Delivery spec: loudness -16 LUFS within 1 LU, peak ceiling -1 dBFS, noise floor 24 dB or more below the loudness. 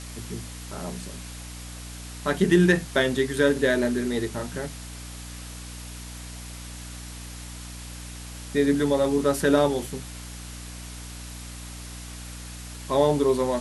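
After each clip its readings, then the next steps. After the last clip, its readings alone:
hum 60 Hz; highest harmonic 300 Hz; hum level -37 dBFS; noise floor -39 dBFS; noise floor target -48 dBFS; loudness -24.0 LUFS; peak level -7.0 dBFS; loudness target -16.0 LUFS
-> hum notches 60/120/180/240/300 Hz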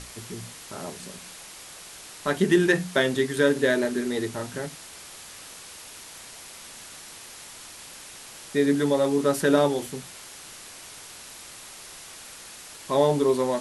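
hum not found; noise floor -44 dBFS; noise floor target -48 dBFS
-> noise print and reduce 6 dB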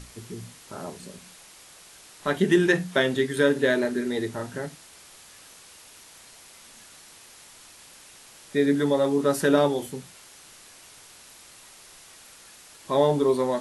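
noise floor -50 dBFS; loudness -23.5 LUFS; peak level -7.5 dBFS; loudness target -16.0 LUFS
-> trim +7.5 dB; peak limiter -1 dBFS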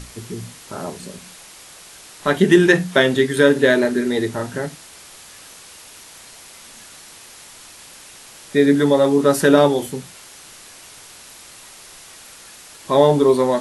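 loudness -16.0 LUFS; peak level -1.0 dBFS; noise floor -42 dBFS

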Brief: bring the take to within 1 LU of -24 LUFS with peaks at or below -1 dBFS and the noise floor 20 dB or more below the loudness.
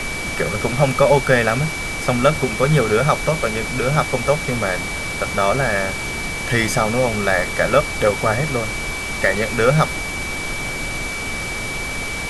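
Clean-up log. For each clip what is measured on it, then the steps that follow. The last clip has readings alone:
steady tone 2.3 kHz; tone level -26 dBFS; noise floor -26 dBFS; noise floor target -39 dBFS; loudness -19.0 LUFS; peak level -2.0 dBFS; loudness target -24.0 LUFS
-> band-stop 2.3 kHz, Q 30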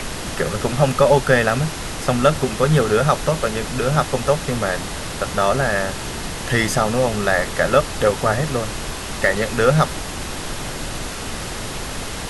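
steady tone not found; noise floor -29 dBFS; noise floor target -40 dBFS
-> noise print and reduce 11 dB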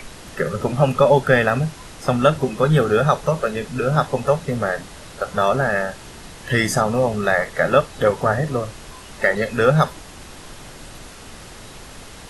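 noise floor -40 dBFS; loudness -19.5 LUFS; peak level -2.0 dBFS; loudness target -24.0 LUFS
-> trim -4.5 dB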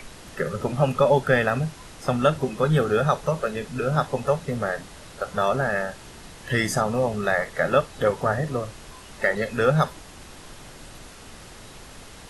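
loudness -24.0 LUFS; peak level -6.5 dBFS; noise floor -44 dBFS

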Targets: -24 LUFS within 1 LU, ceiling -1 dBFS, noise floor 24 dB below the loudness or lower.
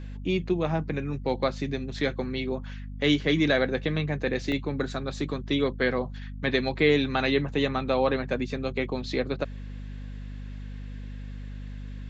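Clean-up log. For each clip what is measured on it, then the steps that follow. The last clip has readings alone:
dropouts 1; longest dropout 1.1 ms; hum 50 Hz; highest harmonic 250 Hz; hum level -35 dBFS; loudness -27.5 LUFS; peak level -9.0 dBFS; loudness target -24.0 LUFS
-> interpolate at 4.52 s, 1.1 ms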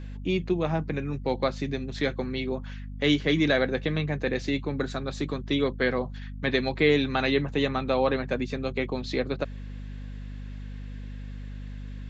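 dropouts 0; hum 50 Hz; highest harmonic 250 Hz; hum level -35 dBFS
-> de-hum 50 Hz, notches 5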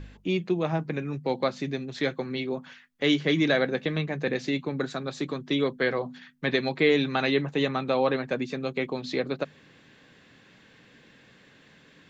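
hum not found; loudness -27.5 LUFS; peak level -9.5 dBFS; loudness target -24.0 LUFS
-> trim +3.5 dB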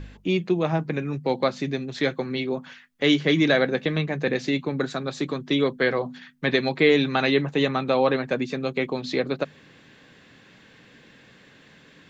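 loudness -24.0 LUFS; peak level -6.0 dBFS; noise floor -53 dBFS

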